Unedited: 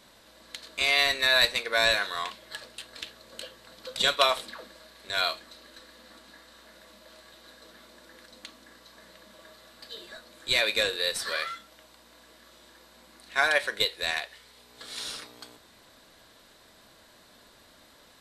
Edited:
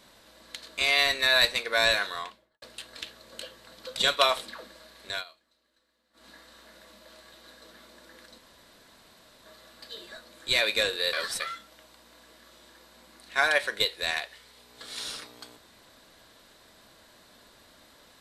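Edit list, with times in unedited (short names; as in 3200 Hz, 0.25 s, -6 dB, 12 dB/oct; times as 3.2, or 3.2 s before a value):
2.02–2.62 studio fade out
5.11–6.26 dip -22 dB, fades 0.13 s
8.38–9.46 room tone
11.13–11.4 reverse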